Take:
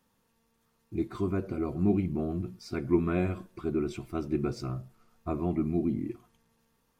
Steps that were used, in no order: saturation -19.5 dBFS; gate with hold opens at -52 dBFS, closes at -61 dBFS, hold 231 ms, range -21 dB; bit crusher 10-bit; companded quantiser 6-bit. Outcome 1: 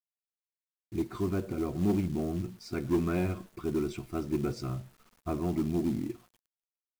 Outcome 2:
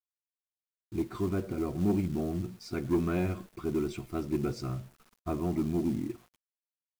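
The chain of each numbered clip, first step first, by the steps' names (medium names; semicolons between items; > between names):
saturation > bit crusher > companded quantiser > gate with hold; companded quantiser > saturation > bit crusher > gate with hold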